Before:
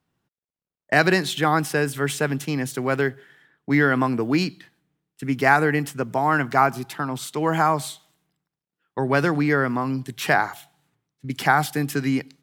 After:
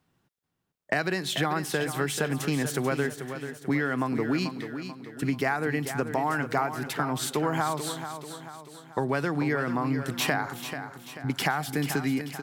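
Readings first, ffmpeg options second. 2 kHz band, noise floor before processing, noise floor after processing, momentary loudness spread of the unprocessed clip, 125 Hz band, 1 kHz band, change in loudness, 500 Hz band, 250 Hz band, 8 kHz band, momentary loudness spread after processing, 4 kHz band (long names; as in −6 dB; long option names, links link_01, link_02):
−7.5 dB, below −85 dBFS, −74 dBFS, 10 LU, −5.0 dB, −8.0 dB, −6.5 dB, −6.0 dB, −5.0 dB, −1.0 dB, 9 LU, −2.0 dB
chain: -filter_complex "[0:a]acompressor=threshold=-28dB:ratio=6,asplit=2[link_01][link_02];[link_02]aecho=0:1:438|876|1314|1752|2190:0.335|0.161|0.0772|0.037|0.0178[link_03];[link_01][link_03]amix=inputs=2:normalize=0,volume=3.5dB"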